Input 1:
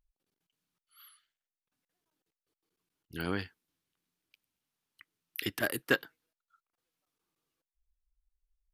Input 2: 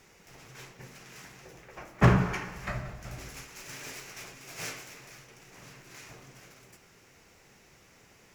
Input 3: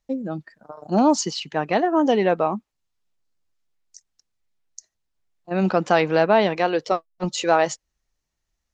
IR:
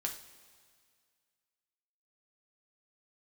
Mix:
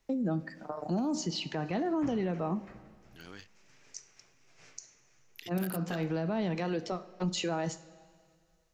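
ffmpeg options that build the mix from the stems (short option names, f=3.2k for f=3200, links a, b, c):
-filter_complex "[0:a]afwtdn=0.00251,crystalizer=i=4.5:c=0,volume=-17dB,asplit=2[a][b];[1:a]lowpass=f=6.8k:w=0.5412,lowpass=f=6.8k:w=1.3066,volume=-20dB[c];[2:a]acrossover=split=230|7300[d][e][f];[d]acompressor=threshold=-27dB:ratio=4[g];[e]acompressor=threshold=-36dB:ratio=4[h];[f]acompressor=threshold=-59dB:ratio=4[i];[g][h][i]amix=inputs=3:normalize=0,volume=-0.5dB,asplit=2[j][k];[k]volume=-4.5dB[l];[b]apad=whole_len=385229[m];[j][m]sidechaincompress=threshold=-54dB:ratio=8:attack=16:release=156[n];[3:a]atrim=start_sample=2205[o];[l][o]afir=irnorm=-1:irlink=0[p];[a][c][n][p]amix=inputs=4:normalize=0,alimiter=limit=-24dB:level=0:latency=1:release=51"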